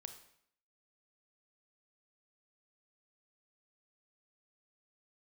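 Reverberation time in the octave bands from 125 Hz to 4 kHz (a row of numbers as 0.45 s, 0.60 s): 0.65 s, 0.70 s, 0.65 s, 0.65 s, 0.65 s, 0.60 s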